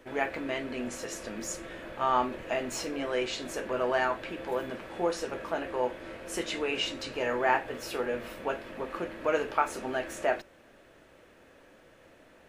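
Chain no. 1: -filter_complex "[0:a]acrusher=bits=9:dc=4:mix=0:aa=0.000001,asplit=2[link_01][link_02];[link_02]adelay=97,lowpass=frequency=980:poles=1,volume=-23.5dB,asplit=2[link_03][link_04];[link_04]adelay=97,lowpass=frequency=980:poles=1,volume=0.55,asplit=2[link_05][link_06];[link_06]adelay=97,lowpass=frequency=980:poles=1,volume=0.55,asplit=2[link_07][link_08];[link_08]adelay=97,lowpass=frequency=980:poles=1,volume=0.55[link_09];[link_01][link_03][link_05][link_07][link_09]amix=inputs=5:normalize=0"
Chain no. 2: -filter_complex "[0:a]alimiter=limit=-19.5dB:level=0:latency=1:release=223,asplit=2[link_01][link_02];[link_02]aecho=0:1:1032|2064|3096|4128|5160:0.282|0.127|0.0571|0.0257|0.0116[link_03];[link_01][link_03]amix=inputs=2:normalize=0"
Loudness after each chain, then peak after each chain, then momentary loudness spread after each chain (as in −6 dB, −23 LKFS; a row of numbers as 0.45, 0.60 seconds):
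−32.0, −34.0 LKFS; −11.0, −18.5 dBFS; 9, 14 LU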